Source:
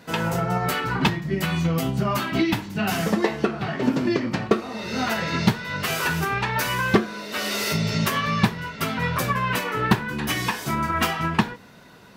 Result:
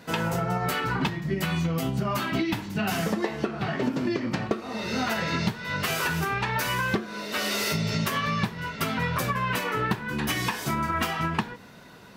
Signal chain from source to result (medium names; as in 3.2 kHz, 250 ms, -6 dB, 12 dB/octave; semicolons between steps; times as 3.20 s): compression 6:1, threshold -23 dBFS, peak gain reduction 11 dB